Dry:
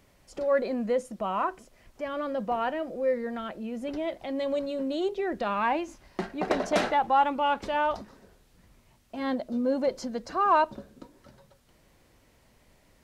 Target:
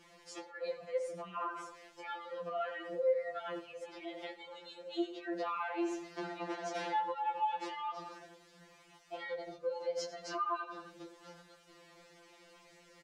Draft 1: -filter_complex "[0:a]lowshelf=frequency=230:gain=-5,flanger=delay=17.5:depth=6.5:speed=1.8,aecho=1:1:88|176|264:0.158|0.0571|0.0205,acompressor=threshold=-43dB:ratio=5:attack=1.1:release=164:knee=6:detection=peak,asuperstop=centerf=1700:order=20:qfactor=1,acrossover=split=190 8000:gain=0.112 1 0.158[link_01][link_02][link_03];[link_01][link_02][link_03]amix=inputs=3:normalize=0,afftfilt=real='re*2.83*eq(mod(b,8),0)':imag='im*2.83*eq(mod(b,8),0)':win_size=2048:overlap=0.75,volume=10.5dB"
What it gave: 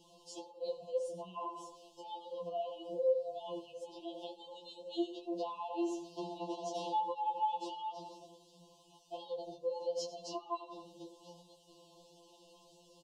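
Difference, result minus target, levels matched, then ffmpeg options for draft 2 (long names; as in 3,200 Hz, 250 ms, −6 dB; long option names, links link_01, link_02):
2,000 Hz band −17.5 dB
-filter_complex "[0:a]lowshelf=frequency=230:gain=-5,flanger=delay=17.5:depth=6.5:speed=1.8,aecho=1:1:88|176|264:0.158|0.0571|0.0205,acompressor=threshold=-43dB:ratio=5:attack=1.1:release=164:knee=6:detection=peak,acrossover=split=190 8000:gain=0.112 1 0.158[link_01][link_02][link_03];[link_01][link_02][link_03]amix=inputs=3:normalize=0,afftfilt=real='re*2.83*eq(mod(b,8),0)':imag='im*2.83*eq(mod(b,8),0)':win_size=2048:overlap=0.75,volume=10.5dB"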